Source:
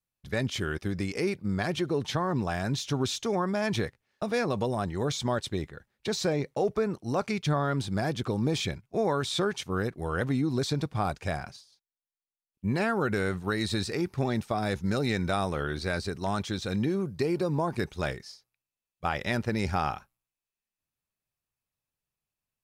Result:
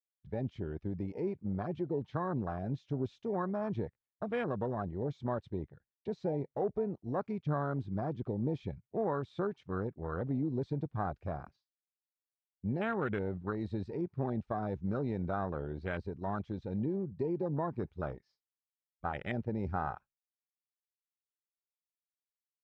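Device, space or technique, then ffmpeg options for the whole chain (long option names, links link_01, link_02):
hearing-loss simulation: -af "lowpass=2900,agate=range=-33dB:threshold=-53dB:ratio=3:detection=peak,afwtdn=0.0282,volume=-6dB"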